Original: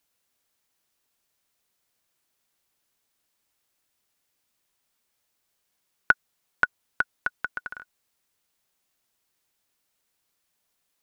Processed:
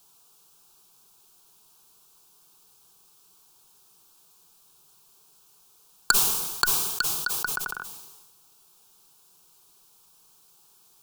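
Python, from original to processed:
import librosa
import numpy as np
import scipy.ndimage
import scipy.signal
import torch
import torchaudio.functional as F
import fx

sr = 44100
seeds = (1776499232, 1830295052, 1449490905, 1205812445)

p1 = fx.cheby_harmonics(x, sr, harmonics=(7,), levels_db=(-8,), full_scale_db=-2.0)
p2 = fx.dmg_noise_colour(p1, sr, seeds[0], colour='white', level_db=-63.0)
p3 = (np.mod(10.0 ** (11.0 / 20.0) * p2 + 1.0, 2.0) - 1.0) / 10.0 ** (11.0 / 20.0)
p4 = p2 + (p3 * librosa.db_to_amplitude(-3.5))
p5 = fx.fixed_phaser(p4, sr, hz=390.0, stages=8)
y = fx.sustainer(p5, sr, db_per_s=42.0)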